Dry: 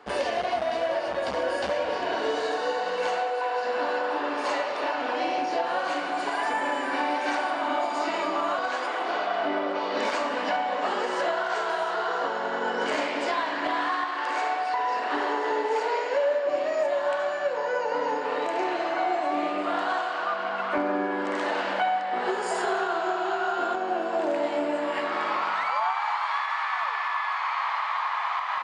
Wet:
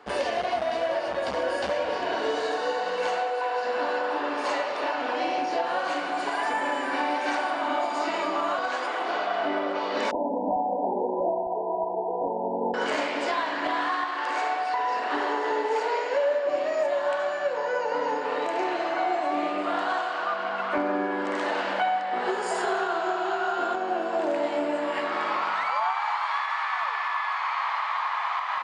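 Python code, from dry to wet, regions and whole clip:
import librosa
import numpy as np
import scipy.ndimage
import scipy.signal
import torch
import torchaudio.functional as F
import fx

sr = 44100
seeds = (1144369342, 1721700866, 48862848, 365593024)

y = fx.chain(x, sr, fx.brickwall_lowpass(high_hz=1000.0),
    fx.low_shelf(hz=240.0, db=11.5), at=(10.11, 12.74))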